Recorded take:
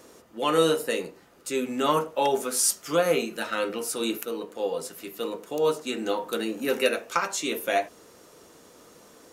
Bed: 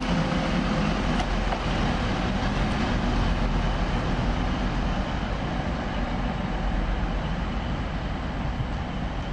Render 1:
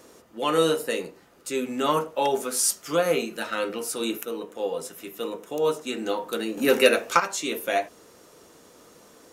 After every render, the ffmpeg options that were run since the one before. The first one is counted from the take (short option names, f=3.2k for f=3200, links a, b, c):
-filter_complex "[0:a]asettb=1/sr,asplit=3[a][b][c];[a]atrim=end=4.054[d];[b]atrim=start=4.05:end=5.91,asetpts=PTS-STARTPTS,afade=t=in:d=0.004:c=qsin,afade=t=out:st=1.856:d=0.004:c=qsin,bandreject=f=4.5k:w=7.1[e];[c]atrim=start=5.906[f];[d][e]acrossfade=d=0.004:c1=hsin:c2=qsin[g];[g][f]acrossfade=d=0.004:c1=qsin:c2=hsin,asettb=1/sr,asplit=3[h][i][j];[h]atrim=end=6.574[k];[i]atrim=start=6.57:end=7.2,asetpts=PTS-STARTPTS,afade=t=in:d=0.004:c=qsin,afade=t=out:st=0.626:d=0.004:c=qsin,acontrast=60[l];[j]atrim=start=7.196[m];[k][l]acrossfade=d=0.004:c1=hsin:c2=qsin[n];[n][m]acrossfade=d=0.004:c1=qsin:c2=hsin"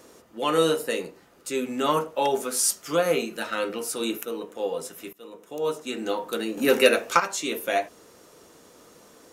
-filter_complex "[0:a]asplit=2[a][b];[a]atrim=end=5.13,asetpts=PTS-STARTPTS,afade=t=out:st=5.126:d=0.004:c=hsin:silence=0.0841395[c];[b]atrim=start=5.13,asetpts=PTS-STARTPTS,afade=t=in:d=1.17:c=qsin:silence=0.0841395[d];[c][d]concat=n=2:v=0:a=1"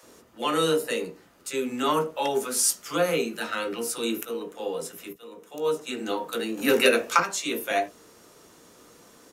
-filter_complex "[0:a]asplit=2[a][b];[b]adelay=17,volume=-12.5dB[c];[a][c]amix=inputs=2:normalize=0,acrossover=split=580[d][e];[d]adelay=30[f];[f][e]amix=inputs=2:normalize=0"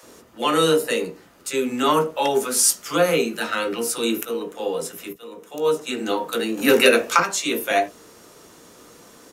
-af "volume=5.5dB,alimiter=limit=-2dB:level=0:latency=1"